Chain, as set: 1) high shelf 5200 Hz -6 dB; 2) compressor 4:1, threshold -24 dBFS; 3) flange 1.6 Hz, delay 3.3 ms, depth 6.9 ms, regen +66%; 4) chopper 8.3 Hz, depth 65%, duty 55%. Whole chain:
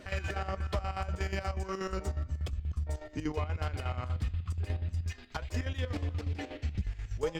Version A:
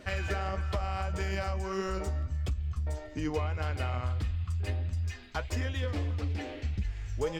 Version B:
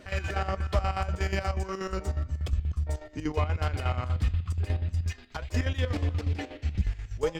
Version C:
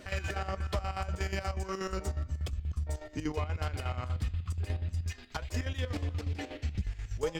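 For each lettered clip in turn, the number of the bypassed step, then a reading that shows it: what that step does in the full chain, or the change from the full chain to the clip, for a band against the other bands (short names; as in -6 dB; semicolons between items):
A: 4, loudness change +2.0 LU; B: 2, momentary loudness spread change +1 LU; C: 1, 8 kHz band +4.0 dB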